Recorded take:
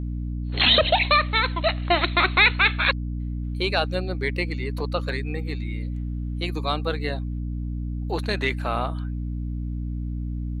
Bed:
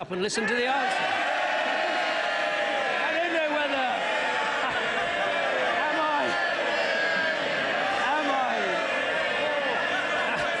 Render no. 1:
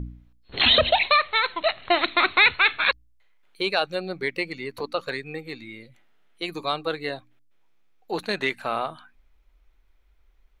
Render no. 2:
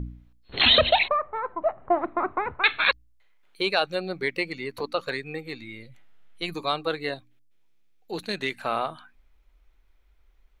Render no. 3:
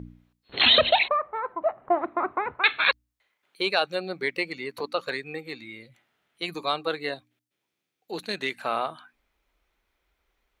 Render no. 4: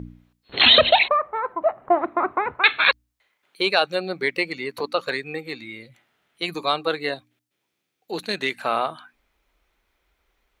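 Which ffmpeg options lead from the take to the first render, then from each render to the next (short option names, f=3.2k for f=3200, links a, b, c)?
-af "bandreject=f=60:t=h:w=4,bandreject=f=120:t=h:w=4,bandreject=f=180:t=h:w=4,bandreject=f=240:t=h:w=4,bandreject=f=300:t=h:w=4"
-filter_complex "[0:a]asettb=1/sr,asplit=3[a][b][c];[a]atrim=end=1.084[d];[b]atrim=start=1.08:end=2.64,asetpts=PTS-STARTPTS,afade=t=in:d=0.004:c=qsin,afade=t=out:st=1.556:d=0.004:c=qsin,lowpass=f=1.1k:w=0.5412,lowpass=f=1.1k:w=1.3066[e];[c]atrim=start=2.636[f];[d][e]acrossfade=d=0.004:c1=hsin:c2=qsin[g];[g][f]acrossfade=d=0.004:c1=qsin:c2=hsin,asettb=1/sr,asplit=3[h][i][j];[h]atrim=end=5.434[k];[i]atrim=start=5.43:end=6.55,asetpts=PTS-STARTPTS,afade=t=in:d=0.004:c=qsin,afade=t=out:st=1.116:d=0.004:c=qsin,asubboost=boost=9.5:cutoff=160[l];[j]atrim=start=6.546[m];[k][l]acrossfade=d=0.004:c1=hsin:c2=qsin[n];[n][m]acrossfade=d=0.004:c1=qsin:c2=hsin,asettb=1/sr,asplit=3[o][p][q];[o]atrim=end=7.144[r];[p]atrim=start=7.14:end=8.55,asetpts=PTS-STARTPTS,afade=t=in:d=0.004:c=qsin,afade=t=out:st=1.406:d=0.004:c=qsin,equalizer=f=970:t=o:w=2.2:g=-9[s];[q]atrim=start=8.546[t];[r][s]acrossfade=d=0.004:c1=hsin:c2=qsin[u];[u][t]acrossfade=d=0.004:c1=qsin:c2=hsin"
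-af "highpass=f=220:p=1"
-af "volume=4.5dB,alimiter=limit=-2dB:level=0:latency=1"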